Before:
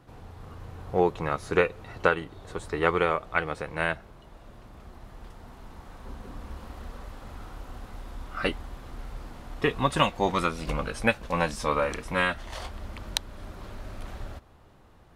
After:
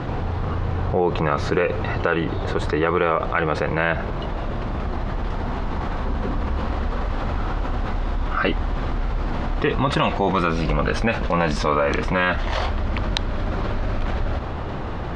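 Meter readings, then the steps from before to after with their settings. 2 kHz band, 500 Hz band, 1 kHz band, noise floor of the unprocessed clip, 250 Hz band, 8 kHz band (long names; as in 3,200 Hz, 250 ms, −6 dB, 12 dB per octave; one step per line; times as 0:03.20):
+5.0 dB, +6.0 dB, +6.5 dB, −54 dBFS, +9.0 dB, −0.5 dB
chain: high-frequency loss of the air 180 metres
boost into a limiter +13.5 dB
envelope flattener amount 70%
level −9 dB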